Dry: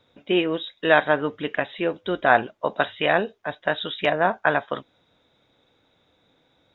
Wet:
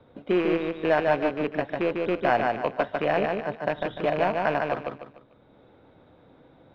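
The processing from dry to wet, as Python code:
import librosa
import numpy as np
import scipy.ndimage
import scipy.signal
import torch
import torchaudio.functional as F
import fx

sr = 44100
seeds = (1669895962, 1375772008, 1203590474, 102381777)

p1 = fx.rattle_buzz(x, sr, strikes_db=-34.0, level_db=-11.0)
p2 = fx.high_shelf(p1, sr, hz=2200.0, db=-10.0)
p3 = fx.sample_hold(p2, sr, seeds[0], rate_hz=3600.0, jitter_pct=0)
p4 = p2 + (p3 * 10.0 ** (-6.5 / 20.0))
p5 = fx.air_absorb(p4, sr, metres=330.0)
p6 = p5 + fx.echo_feedback(p5, sr, ms=148, feedback_pct=28, wet_db=-4, dry=0)
p7 = fx.band_squash(p6, sr, depth_pct=40)
y = p7 * 10.0 ** (-4.0 / 20.0)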